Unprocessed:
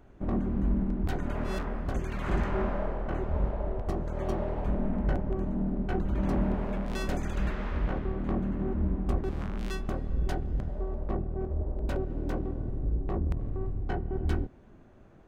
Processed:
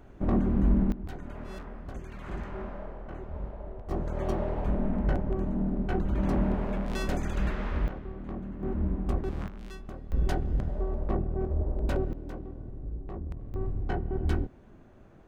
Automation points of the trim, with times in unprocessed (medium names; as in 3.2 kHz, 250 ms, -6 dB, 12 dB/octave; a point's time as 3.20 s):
+4 dB
from 0.92 s -8.5 dB
from 3.91 s +1 dB
from 7.88 s -7.5 dB
from 8.63 s -0.5 dB
from 9.48 s -9 dB
from 10.12 s +2.5 dB
from 12.13 s -7.5 dB
from 13.54 s +1 dB